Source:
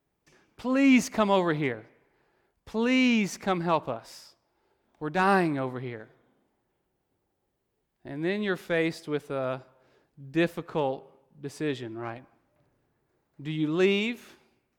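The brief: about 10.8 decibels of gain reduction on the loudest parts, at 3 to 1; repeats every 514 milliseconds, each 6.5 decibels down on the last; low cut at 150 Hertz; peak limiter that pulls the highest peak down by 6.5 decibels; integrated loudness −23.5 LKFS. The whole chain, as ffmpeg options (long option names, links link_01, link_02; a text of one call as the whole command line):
ffmpeg -i in.wav -af "highpass=150,acompressor=threshold=-32dB:ratio=3,alimiter=level_in=2.5dB:limit=-24dB:level=0:latency=1,volume=-2.5dB,aecho=1:1:514|1028|1542|2056|2570|3084:0.473|0.222|0.105|0.0491|0.0231|0.0109,volume=14.5dB" out.wav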